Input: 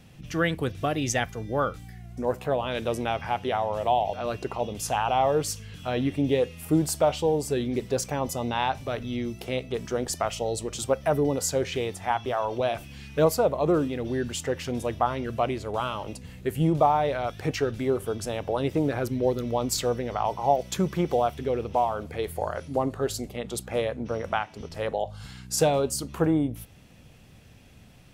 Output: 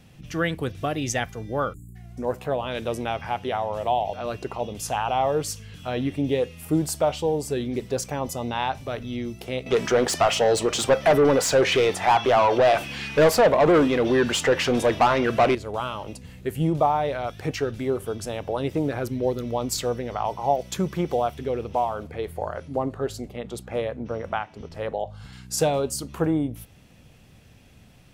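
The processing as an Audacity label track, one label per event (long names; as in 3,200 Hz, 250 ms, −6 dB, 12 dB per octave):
1.730000	1.960000	time-frequency box erased 420–6,700 Hz
9.660000	15.550000	mid-hump overdrive drive 24 dB, tone 2,600 Hz, clips at −8.5 dBFS
22.070000	25.330000	high-shelf EQ 3,800 Hz −8.5 dB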